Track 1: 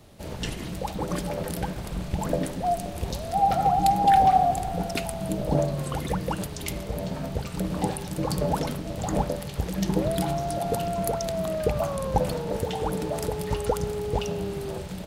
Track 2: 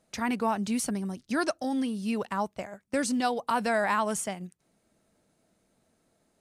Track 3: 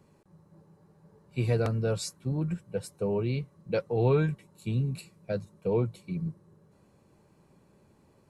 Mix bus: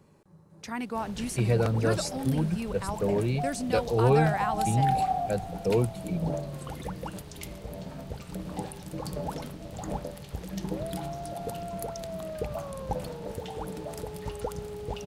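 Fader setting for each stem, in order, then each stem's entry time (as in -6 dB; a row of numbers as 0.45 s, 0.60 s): -8.5 dB, -5.0 dB, +2.0 dB; 0.75 s, 0.50 s, 0.00 s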